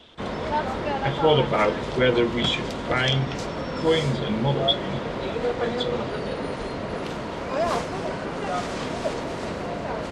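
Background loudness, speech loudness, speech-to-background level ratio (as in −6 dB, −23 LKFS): −29.0 LKFS, −24.5 LKFS, 4.5 dB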